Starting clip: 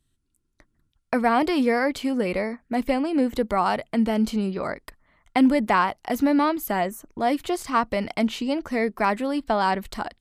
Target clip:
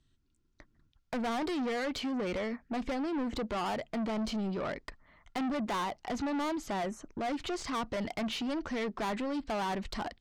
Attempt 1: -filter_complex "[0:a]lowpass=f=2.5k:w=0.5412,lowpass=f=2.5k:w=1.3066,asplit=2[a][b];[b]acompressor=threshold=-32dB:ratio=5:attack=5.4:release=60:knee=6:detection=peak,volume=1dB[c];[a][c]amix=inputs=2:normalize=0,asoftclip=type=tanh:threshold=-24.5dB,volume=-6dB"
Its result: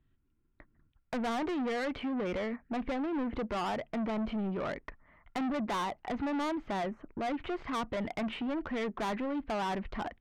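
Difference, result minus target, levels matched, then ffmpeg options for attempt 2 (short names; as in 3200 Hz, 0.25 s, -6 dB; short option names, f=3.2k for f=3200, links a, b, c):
8000 Hz band -6.0 dB
-filter_complex "[0:a]lowpass=f=6.5k:w=0.5412,lowpass=f=6.5k:w=1.3066,asplit=2[a][b];[b]acompressor=threshold=-32dB:ratio=5:attack=5.4:release=60:knee=6:detection=peak,volume=1dB[c];[a][c]amix=inputs=2:normalize=0,asoftclip=type=tanh:threshold=-24.5dB,volume=-6dB"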